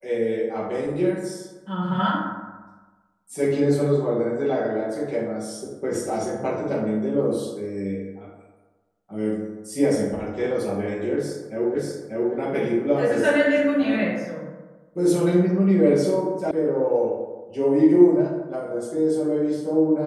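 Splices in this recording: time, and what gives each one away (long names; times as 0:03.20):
0:11.75: the same again, the last 0.59 s
0:16.51: cut off before it has died away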